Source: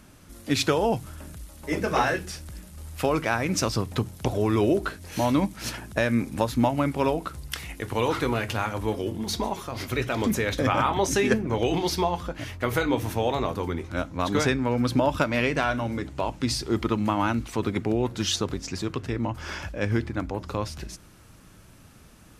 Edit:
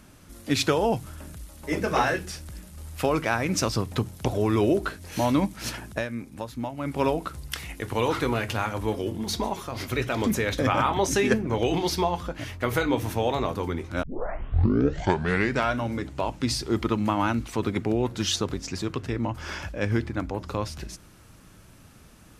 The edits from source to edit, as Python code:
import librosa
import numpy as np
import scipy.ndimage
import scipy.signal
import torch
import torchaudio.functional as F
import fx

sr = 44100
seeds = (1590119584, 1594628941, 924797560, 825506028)

y = fx.edit(x, sr, fx.fade_down_up(start_s=5.88, length_s=1.11, db=-10.0, fade_s=0.2),
    fx.tape_start(start_s=14.03, length_s=1.7), tone=tone)